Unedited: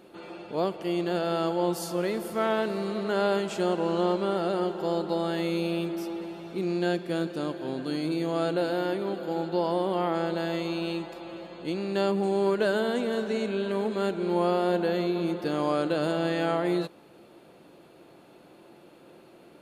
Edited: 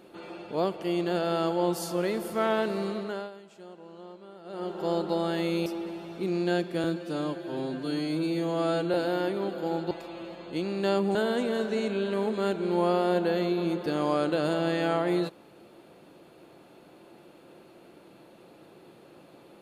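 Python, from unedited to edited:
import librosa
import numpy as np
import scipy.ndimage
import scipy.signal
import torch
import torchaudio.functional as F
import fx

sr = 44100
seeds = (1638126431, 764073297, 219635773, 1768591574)

y = fx.edit(x, sr, fx.fade_down_up(start_s=2.85, length_s=2.05, db=-20.5, fade_s=0.46),
    fx.cut(start_s=5.66, length_s=0.35),
    fx.stretch_span(start_s=7.19, length_s=1.4, factor=1.5),
    fx.cut(start_s=9.56, length_s=1.47),
    fx.cut(start_s=12.27, length_s=0.46), tone=tone)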